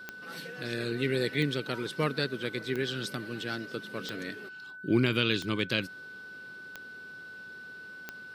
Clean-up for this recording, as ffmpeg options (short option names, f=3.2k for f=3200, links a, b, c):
-af "adeclick=t=4,bandreject=f=1.5k:w=30"